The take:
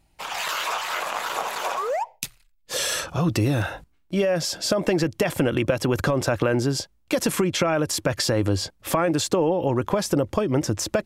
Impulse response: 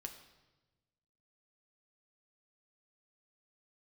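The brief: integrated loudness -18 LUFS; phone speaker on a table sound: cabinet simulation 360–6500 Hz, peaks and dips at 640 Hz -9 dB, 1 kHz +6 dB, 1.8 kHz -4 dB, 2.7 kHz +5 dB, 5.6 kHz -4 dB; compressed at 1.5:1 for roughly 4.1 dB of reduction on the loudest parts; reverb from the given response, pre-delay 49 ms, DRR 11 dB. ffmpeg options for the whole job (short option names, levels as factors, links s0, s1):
-filter_complex "[0:a]acompressor=threshold=0.0355:ratio=1.5,asplit=2[s0][s1];[1:a]atrim=start_sample=2205,adelay=49[s2];[s1][s2]afir=irnorm=-1:irlink=0,volume=0.447[s3];[s0][s3]amix=inputs=2:normalize=0,highpass=f=360:w=0.5412,highpass=f=360:w=1.3066,equalizer=f=640:t=q:w=4:g=-9,equalizer=f=1000:t=q:w=4:g=6,equalizer=f=1800:t=q:w=4:g=-4,equalizer=f=2700:t=q:w=4:g=5,equalizer=f=5600:t=q:w=4:g=-4,lowpass=f=6500:w=0.5412,lowpass=f=6500:w=1.3066,volume=3.98"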